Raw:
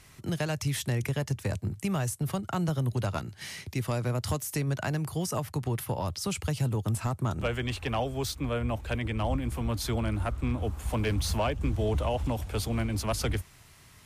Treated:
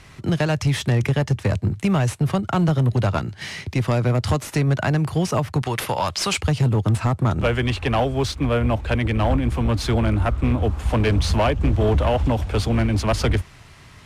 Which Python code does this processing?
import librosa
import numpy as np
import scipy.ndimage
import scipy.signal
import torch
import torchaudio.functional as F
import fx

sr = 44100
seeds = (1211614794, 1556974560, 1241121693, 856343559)

p1 = fx.tilt_shelf(x, sr, db=-9.0, hz=640.0, at=(5.62, 6.41))
p2 = np.clip(10.0 ** (24.0 / 20.0) * p1, -1.0, 1.0) / 10.0 ** (24.0 / 20.0)
p3 = fx.sample_hold(p2, sr, seeds[0], rate_hz=12000.0, jitter_pct=0)
p4 = p2 + (p3 * 10.0 ** (-9.0 / 20.0))
p5 = fx.air_absorb(p4, sr, metres=55.0)
y = p5 * 10.0 ** (8.0 / 20.0)